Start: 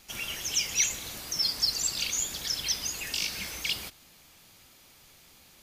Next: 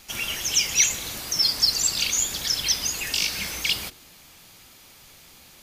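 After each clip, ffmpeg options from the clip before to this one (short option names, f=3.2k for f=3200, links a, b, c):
-af "bandreject=f=46.4:t=h:w=4,bandreject=f=92.8:t=h:w=4,bandreject=f=139.2:t=h:w=4,bandreject=f=185.6:t=h:w=4,bandreject=f=232:t=h:w=4,bandreject=f=278.4:t=h:w=4,bandreject=f=324.8:t=h:w=4,bandreject=f=371.2:t=h:w=4,bandreject=f=417.6:t=h:w=4,bandreject=f=464:t=h:w=4,bandreject=f=510.4:t=h:w=4,bandreject=f=556.8:t=h:w=4,bandreject=f=603.2:t=h:w=4,bandreject=f=649.6:t=h:w=4,bandreject=f=696:t=h:w=4,bandreject=f=742.4:t=h:w=4,volume=6.5dB"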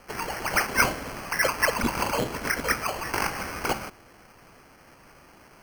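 -af "acrusher=samples=12:mix=1:aa=0.000001,volume=-2.5dB"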